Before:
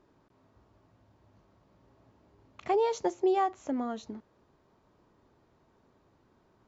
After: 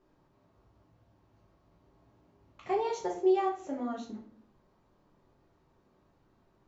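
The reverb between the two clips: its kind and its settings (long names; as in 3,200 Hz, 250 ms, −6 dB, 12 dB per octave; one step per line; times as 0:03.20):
rectangular room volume 58 cubic metres, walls mixed, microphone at 0.93 metres
level −7 dB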